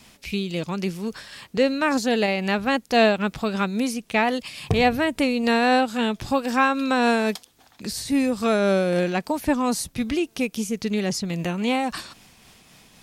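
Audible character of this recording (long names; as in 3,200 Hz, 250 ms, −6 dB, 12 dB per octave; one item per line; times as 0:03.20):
tremolo triangle 3.7 Hz, depth 35%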